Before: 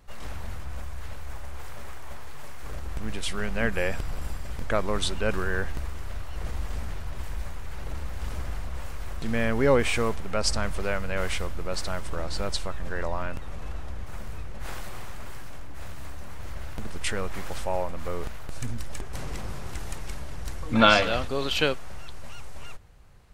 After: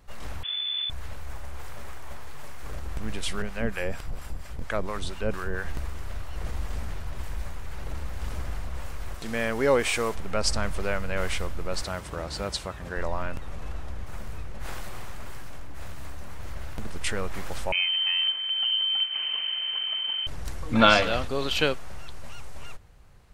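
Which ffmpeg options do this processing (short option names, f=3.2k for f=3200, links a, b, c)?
-filter_complex "[0:a]asettb=1/sr,asplit=3[a][b][c];[a]atrim=end=0.434[d];[b]atrim=start=0.43:end=0.9,asetpts=PTS-STARTPTS,afade=t=in:d=0.004:c=qsin,afade=t=out:st=0.466:d=0.004:c=qsin,lowpass=f=3k:t=q:w=0.5098,lowpass=f=3k:t=q:w=0.6013,lowpass=f=3k:t=q:w=0.9,lowpass=f=3k:t=q:w=2.563,afreqshift=-3500[e];[c]atrim=start=0.896[f];[d][e]acrossfade=d=0.004:c1=hsin:c2=qsin[g];[g][f]acrossfade=d=0.004:c1=qsin:c2=hsin,asettb=1/sr,asplit=3[h][i][j];[h]atrim=end=3.424[k];[i]atrim=start=3.42:end=5.65,asetpts=PTS-STARTPTS,afade=t=in:d=0.004:c=qsin,afade=t=out:st=2.226:d=0.004:c=qsin,acrossover=split=730[l][m];[l]aeval=exprs='val(0)*(1-0.7/2+0.7/2*cos(2*PI*4.3*n/s))':c=same[n];[m]aeval=exprs='val(0)*(1-0.7/2-0.7/2*cos(2*PI*4.3*n/s))':c=same[o];[n][o]amix=inputs=2:normalize=0[p];[j]atrim=start=5.646[q];[k][p]acrossfade=d=0.004:c1=hsin:c2=qsin[r];[r][q]acrossfade=d=0.004:c1=qsin:c2=hsin,asettb=1/sr,asplit=3[s][t][u];[s]atrim=end=9.144[v];[t]atrim=start=9.14:end=10.15,asetpts=PTS-STARTPTS,afade=t=in:d=0.004:c=qsin,afade=t=out:st=1.006:d=0.004:c=qsin,bass=f=250:g=-8,treble=f=4k:g=4[w];[u]atrim=start=10.146[x];[v][w]acrossfade=d=0.004:c1=hsin:c2=qsin[y];[y][x]acrossfade=d=0.004:c1=qsin:c2=hsin,asettb=1/sr,asplit=3[z][aa][ab];[z]atrim=end=11.824[ac];[aa]atrim=start=11.82:end=12.97,asetpts=PTS-STARTPTS,afade=t=in:d=0.004:c=qsin,afade=t=out:st=1.146:d=0.004:c=qsin,highpass=58[ad];[ab]atrim=start=12.966[ae];[ac][ad]acrossfade=d=0.004:c1=hsin:c2=qsin[af];[af][ae]acrossfade=d=0.004:c1=qsin:c2=hsin,asettb=1/sr,asplit=3[ag][ah][ai];[ag]atrim=end=17.724[aj];[ah]atrim=start=17.72:end=20.27,asetpts=PTS-STARTPTS,afade=t=in:d=0.004:c=qsin,afade=t=out:st=2.546:d=0.004:c=qsin,lowpass=f=2.6k:t=q:w=0.5098,lowpass=f=2.6k:t=q:w=0.6013,lowpass=f=2.6k:t=q:w=0.9,lowpass=f=2.6k:t=q:w=2.563,afreqshift=-3100[ak];[ai]atrim=start=20.266[al];[aj][ak]acrossfade=d=0.004:c1=hsin:c2=qsin[am];[am][al]acrossfade=d=0.004:c1=qsin:c2=hsin"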